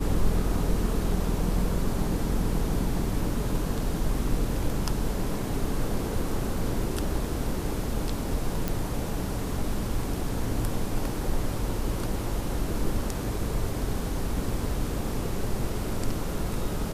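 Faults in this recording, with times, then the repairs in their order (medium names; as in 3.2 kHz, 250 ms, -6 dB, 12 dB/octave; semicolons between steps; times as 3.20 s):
8.68 s: pop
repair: de-click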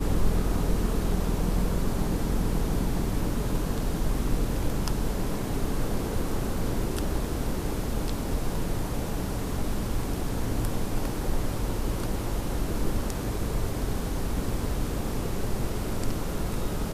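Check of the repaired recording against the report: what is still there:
nothing left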